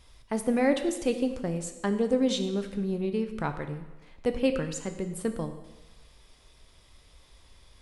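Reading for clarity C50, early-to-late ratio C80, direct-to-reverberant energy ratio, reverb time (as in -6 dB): 10.0 dB, 11.5 dB, 7.0 dB, 1.1 s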